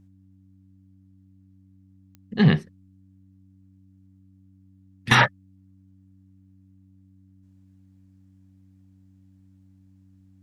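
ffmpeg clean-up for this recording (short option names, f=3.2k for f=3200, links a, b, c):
-af "adeclick=t=4,bandreject=f=95.2:t=h:w=4,bandreject=f=190.4:t=h:w=4,bandreject=f=285.6:t=h:w=4"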